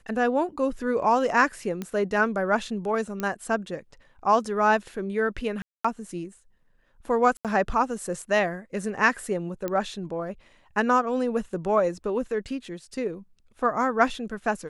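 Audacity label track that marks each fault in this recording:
1.820000	1.820000	pop -18 dBFS
3.200000	3.200000	pop -16 dBFS
5.620000	5.840000	gap 0.225 s
7.370000	7.450000	gap 77 ms
9.680000	9.680000	pop -16 dBFS

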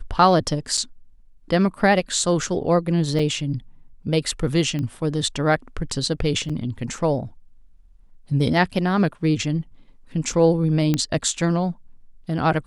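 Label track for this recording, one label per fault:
0.770000	0.780000	gap 6.1 ms
3.190000	3.190000	gap 3.3 ms
4.790000	4.790000	pop -17 dBFS
6.490000	6.500000	gap 5.9 ms
10.940000	10.940000	pop -8 dBFS

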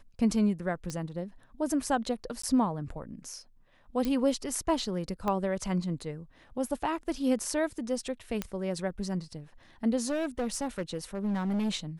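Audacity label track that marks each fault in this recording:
0.900000	0.900000	pop -22 dBFS
2.420000	2.430000	gap 14 ms
4.050000	4.050000	pop -18 dBFS
5.280000	5.280000	pop -18 dBFS
8.420000	8.420000	pop -16 dBFS
10.090000	11.700000	clipped -26.5 dBFS

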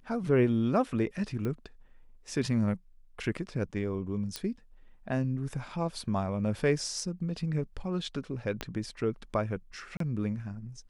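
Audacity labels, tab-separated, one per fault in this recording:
1.450000	1.450000	pop -23 dBFS
4.360000	4.360000	pop -18 dBFS
8.610000	8.610000	pop -18 dBFS
9.970000	10.000000	gap 33 ms

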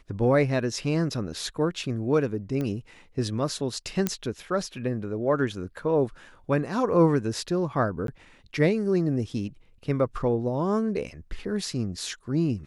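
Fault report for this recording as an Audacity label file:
2.610000	2.610000	pop -19 dBFS
4.070000	4.070000	pop -10 dBFS
8.070000	8.080000	gap 12 ms

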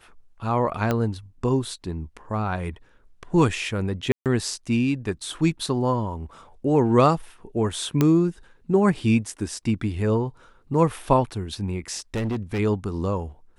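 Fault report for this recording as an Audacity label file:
0.910000	0.910000	pop -10 dBFS
4.120000	4.260000	gap 0.138 s
8.010000	8.010000	pop -7 dBFS
12.140000	12.600000	clipped -22.5 dBFS

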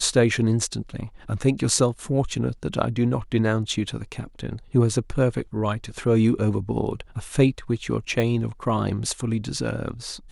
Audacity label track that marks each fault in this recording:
8.200000	8.200000	pop -12 dBFS

